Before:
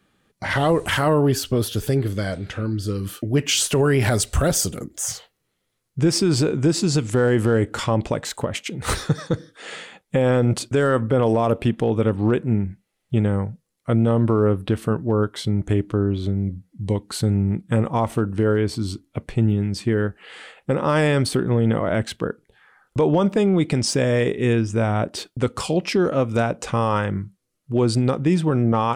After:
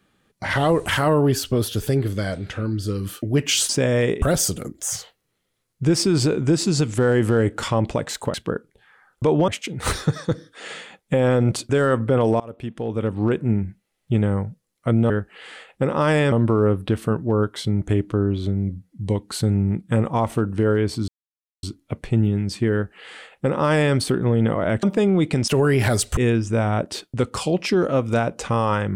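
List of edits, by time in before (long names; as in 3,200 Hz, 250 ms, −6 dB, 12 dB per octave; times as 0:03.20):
0:03.69–0:04.38: swap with 0:23.87–0:24.40
0:11.42–0:12.46: fade in, from −23.5 dB
0:18.88: splice in silence 0.55 s
0:19.98–0:21.20: duplicate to 0:14.12
0:22.08–0:23.22: move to 0:08.50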